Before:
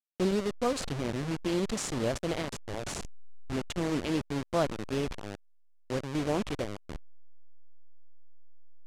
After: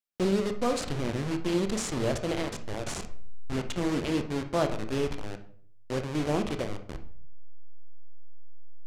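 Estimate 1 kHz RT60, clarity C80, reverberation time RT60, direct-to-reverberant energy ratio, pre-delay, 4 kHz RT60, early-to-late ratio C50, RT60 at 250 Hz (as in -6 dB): 0.50 s, 15.5 dB, 0.55 s, 7.0 dB, 26 ms, 0.40 s, 10.5 dB, 0.70 s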